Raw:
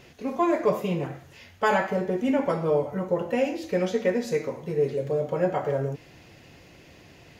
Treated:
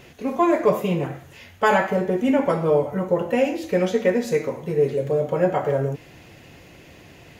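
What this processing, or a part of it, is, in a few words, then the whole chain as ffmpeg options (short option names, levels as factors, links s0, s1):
exciter from parts: -filter_complex "[0:a]asplit=2[s0][s1];[s1]highpass=f=4600:w=0.5412,highpass=f=4600:w=1.3066,asoftclip=type=tanh:threshold=0.0112,volume=0.447[s2];[s0][s2]amix=inputs=2:normalize=0,volume=1.68"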